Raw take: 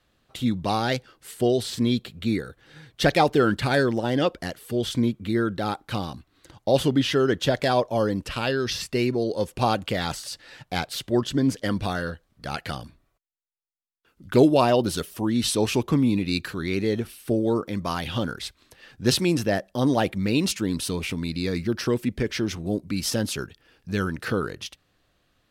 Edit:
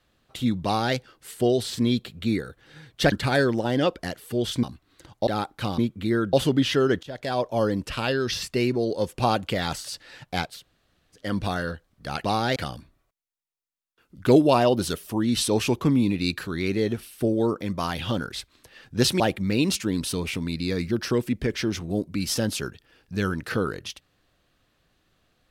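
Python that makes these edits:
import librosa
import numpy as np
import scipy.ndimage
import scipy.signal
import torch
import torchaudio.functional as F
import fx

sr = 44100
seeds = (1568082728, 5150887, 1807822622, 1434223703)

y = fx.edit(x, sr, fx.duplicate(start_s=0.64, length_s=0.32, to_s=12.63),
    fx.cut(start_s=3.12, length_s=0.39),
    fx.swap(start_s=5.02, length_s=0.55, other_s=6.08, other_length_s=0.64),
    fx.fade_in_from(start_s=7.42, length_s=0.57, floor_db=-24.0),
    fx.room_tone_fill(start_s=10.91, length_s=0.72, crossfade_s=0.24),
    fx.cut(start_s=19.27, length_s=0.69), tone=tone)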